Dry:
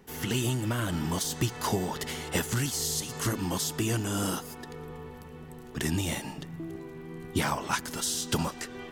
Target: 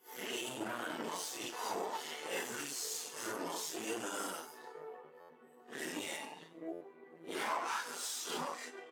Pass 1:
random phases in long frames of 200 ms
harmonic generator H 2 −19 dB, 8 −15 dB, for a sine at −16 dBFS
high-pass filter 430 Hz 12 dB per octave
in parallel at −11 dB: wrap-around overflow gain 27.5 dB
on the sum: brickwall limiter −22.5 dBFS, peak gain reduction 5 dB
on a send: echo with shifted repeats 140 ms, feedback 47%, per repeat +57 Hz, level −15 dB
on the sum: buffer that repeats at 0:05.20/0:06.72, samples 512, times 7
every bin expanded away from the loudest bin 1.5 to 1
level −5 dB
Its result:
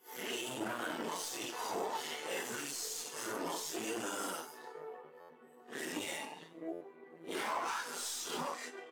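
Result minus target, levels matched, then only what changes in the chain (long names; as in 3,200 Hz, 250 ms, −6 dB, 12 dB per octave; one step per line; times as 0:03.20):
wrap-around overflow: distortion +17 dB
change: wrap-around overflow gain 20.5 dB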